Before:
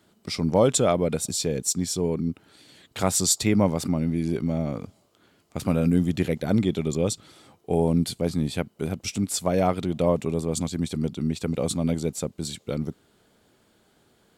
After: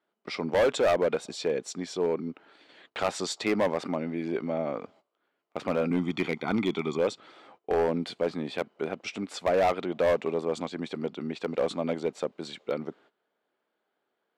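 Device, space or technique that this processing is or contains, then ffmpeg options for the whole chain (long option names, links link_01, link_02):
walkie-talkie: -filter_complex "[0:a]asettb=1/sr,asplit=3[link_01][link_02][link_03];[link_01]atrim=end=5.904[link_04];[link_02]atrim=start=5.9:end=6.99,asetpts=PTS-STARTPTS,afade=type=in:duration=0.004:curve=qsin,afade=type=out:start_time=1.086:duration=0.004:curve=qsin,aecho=1:1:0.9:0.77,atrim=end_sample=48069[link_05];[link_03]atrim=start=6.986[link_06];[link_04][link_05]acrossfade=duration=0.004:curve1=hsin:curve2=qsin[link_07];[link_07][link_06]acrossfade=duration=0.004:curve1=qsin:curve2=hsin,highpass=450,lowpass=2400,asoftclip=type=hard:threshold=-23dB,agate=range=-17dB:threshold=-59dB:ratio=16:detection=peak,volume=4dB"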